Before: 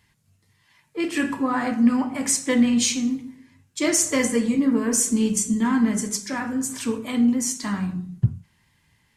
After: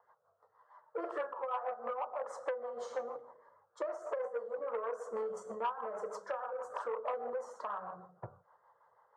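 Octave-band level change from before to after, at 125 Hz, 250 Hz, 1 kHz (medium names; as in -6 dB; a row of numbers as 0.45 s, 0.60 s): under -30 dB, -36.0 dB, -6.5 dB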